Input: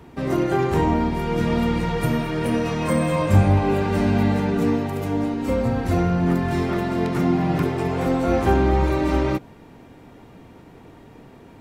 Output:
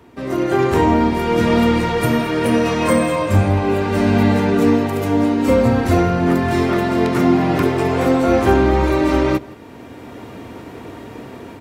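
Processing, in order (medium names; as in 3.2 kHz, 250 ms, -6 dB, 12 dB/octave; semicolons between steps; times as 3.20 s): delay 167 ms -23.5 dB; level rider gain up to 13 dB; high-pass 81 Hz; peaking EQ 160 Hz -10.5 dB 0.39 oct; band-stop 820 Hz, Q 12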